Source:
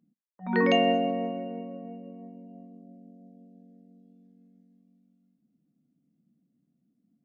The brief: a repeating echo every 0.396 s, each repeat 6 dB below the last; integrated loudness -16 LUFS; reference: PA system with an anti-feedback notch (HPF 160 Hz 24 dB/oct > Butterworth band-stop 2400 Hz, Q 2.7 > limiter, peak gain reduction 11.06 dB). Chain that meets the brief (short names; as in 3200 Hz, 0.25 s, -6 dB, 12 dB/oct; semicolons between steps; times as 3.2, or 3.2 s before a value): HPF 160 Hz 24 dB/oct; Butterworth band-stop 2400 Hz, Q 2.7; feedback echo 0.396 s, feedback 50%, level -6 dB; gain +17.5 dB; limiter -5 dBFS